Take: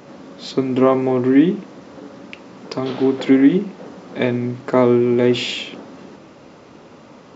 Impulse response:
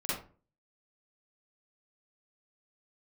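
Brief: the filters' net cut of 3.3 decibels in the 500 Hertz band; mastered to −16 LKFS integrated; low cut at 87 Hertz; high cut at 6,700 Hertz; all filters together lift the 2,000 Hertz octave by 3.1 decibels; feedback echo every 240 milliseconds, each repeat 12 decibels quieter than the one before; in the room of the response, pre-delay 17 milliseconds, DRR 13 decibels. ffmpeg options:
-filter_complex "[0:a]highpass=87,lowpass=6700,equalizer=frequency=500:width_type=o:gain=-5,equalizer=frequency=2000:width_type=o:gain=4,aecho=1:1:240|480|720:0.251|0.0628|0.0157,asplit=2[link_01][link_02];[1:a]atrim=start_sample=2205,adelay=17[link_03];[link_02][link_03]afir=irnorm=-1:irlink=0,volume=-18.5dB[link_04];[link_01][link_04]amix=inputs=2:normalize=0,volume=2.5dB"

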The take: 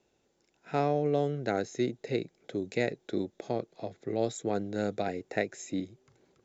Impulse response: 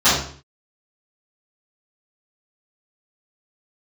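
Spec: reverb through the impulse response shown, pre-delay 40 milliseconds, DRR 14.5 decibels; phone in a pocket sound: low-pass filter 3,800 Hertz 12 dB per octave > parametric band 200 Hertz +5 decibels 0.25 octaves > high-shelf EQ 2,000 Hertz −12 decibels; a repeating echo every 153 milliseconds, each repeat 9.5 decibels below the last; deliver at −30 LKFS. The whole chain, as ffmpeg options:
-filter_complex "[0:a]aecho=1:1:153|306|459|612:0.335|0.111|0.0365|0.012,asplit=2[link_01][link_02];[1:a]atrim=start_sample=2205,adelay=40[link_03];[link_02][link_03]afir=irnorm=-1:irlink=0,volume=-38dB[link_04];[link_01][link_04]amix=inputs=2:normalize=0,lowpass=3800,equalizer=frequency=200:width_type=o:width=0.25:gain=5,highshelf=frequency=2000:gain=-12,volume=2.5dB"

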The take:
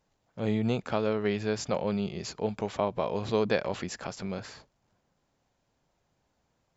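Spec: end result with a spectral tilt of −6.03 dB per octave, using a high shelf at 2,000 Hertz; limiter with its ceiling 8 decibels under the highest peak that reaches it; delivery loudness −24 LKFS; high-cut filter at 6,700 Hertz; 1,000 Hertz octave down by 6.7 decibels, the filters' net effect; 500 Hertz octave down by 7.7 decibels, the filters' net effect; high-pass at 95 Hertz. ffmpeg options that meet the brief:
ffmpeg -i in.wav -af "highpass=95,lowpass=6700,equalizer=frequency=500:width_type=o:gain=-8,equalizer=frequency=1000:width_type=o:gain=-4.5,highshelf=frequency=2000:gain=-5,volume=13dB,alimiter=limit=-11dB:level=0:latency=1" out.wav

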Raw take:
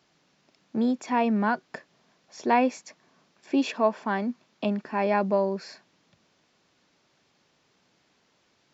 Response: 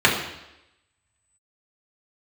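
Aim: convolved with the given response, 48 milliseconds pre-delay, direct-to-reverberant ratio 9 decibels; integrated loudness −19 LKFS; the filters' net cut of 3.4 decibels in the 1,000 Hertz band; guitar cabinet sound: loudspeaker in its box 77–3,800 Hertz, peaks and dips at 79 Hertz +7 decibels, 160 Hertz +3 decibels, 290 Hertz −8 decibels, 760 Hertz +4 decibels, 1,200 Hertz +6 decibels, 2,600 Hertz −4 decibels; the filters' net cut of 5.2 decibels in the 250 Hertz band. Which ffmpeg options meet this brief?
-filter_complex "[0:a]equalizer=frequency=250:width_type=o:gain=-3.5,equalizer=frequency=1000:width_type=o:gain=-8.5,asplit=2[link_01][link_02];[1:a]atrim=start_sample=2205,adelay=48[link_03];[link_02][link_03]afir=irnorm=-1:irlink=0,volume=-31dB[link_04];[link_01][link_04]amix=inputs=2:normalize=0,highpass=77,equalizer=frequency=79:width_type=q:width=4:gain=7,equalizer=frequency=160:width_type=q:width=4:gain=3,equalizer=frequency=290:width_type=q:width=4:gain=-8,equalizer=frequency=760:width_type=q:width=4:gain=4,equalizer=frequency=1200:width_type=q:width=4:gain=6,equalizer=frequency=2600:width_type=q:width=4:gain=-4,lowpass=frequency=3800:width=0.5412,lowpass=frequency=3800:width=1.3066,volume=11dB"

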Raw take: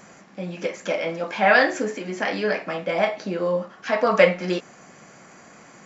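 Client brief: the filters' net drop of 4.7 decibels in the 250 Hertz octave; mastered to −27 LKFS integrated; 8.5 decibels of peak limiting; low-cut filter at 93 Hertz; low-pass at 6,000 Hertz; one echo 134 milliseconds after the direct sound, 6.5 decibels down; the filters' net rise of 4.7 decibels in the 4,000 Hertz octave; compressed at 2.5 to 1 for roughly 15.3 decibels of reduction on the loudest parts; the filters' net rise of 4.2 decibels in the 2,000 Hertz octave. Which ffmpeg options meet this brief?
ffmpeg -i in.wav -af "highpass=93,lowpass=6000,equalizer=frequency=250:width_type=o:gain=-7,equalizer=frequency=2000:width_type=o:gain=4,equalizer=frequency=4000:width_type=o:gain=5.5,acompressor=threshold=-33dB:ratio=2.5,alimiter=limit=-23dB:level=0:latency=1,aecho=1:1:134:0.473,volume=6.5dB" out.wav

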